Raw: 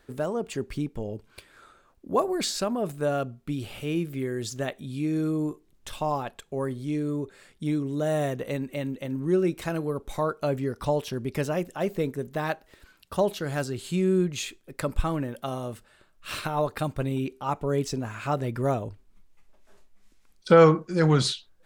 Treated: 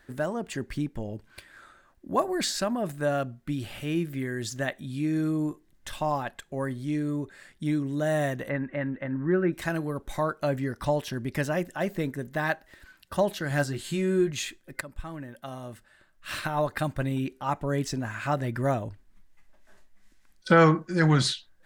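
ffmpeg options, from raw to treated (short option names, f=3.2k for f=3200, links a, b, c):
-filter_complex "[0:a]asplit=3[a][b][c];[a]afade=t=out:st=8.48:d=0.02[d];[b]lowpass=f=1.6k:t=q:w=2,afade=t=in:st=8.48:d=0.02,afade=t=out:st=9.52:d=0.02[e];[c]afade=t=in:st=9.52:d=0.02[f];[d][e][f]amix=inputs=3:normalize=0,asettb=1/sr,asplit=3[g][h][i];[g]atrim=end=13.494[j];[h]atrim=start=13.49:end=14.31,asetpts=PTS-STARTPTS,afade=t=in:d=0.004:c=qsin,afade=t=out:st=0.816:d=0.004:c=qsin,asplit=2[k][l];[l]adelay=14,volume=-5dB[m];[k][m]amix=inputs=2:normalize=0,atrim=end_sample=36162[n];[i]atrim=start=14.306[o];[j][n]acrossfade=d=0.004:c1=hsin:c2=qsin[p];[p][o]acrossfade=d=0.004:c1=qsin:c2=hsin,asplit=2[q][r];[q]atrim=end=14.81,asetpts=PTS-STARTPTS,afade=t=out:st=14.806:d=0.004:c=hsin:silence=0.158489[s];[r]atrim=start=14.81,asetpts=PTS-STARTPTS,afade=t=in:d=1.86:silence=0.158489[t];[s][t]concat=n=2:v=0:a=1,superequalizer=7b=0.501:11b=2"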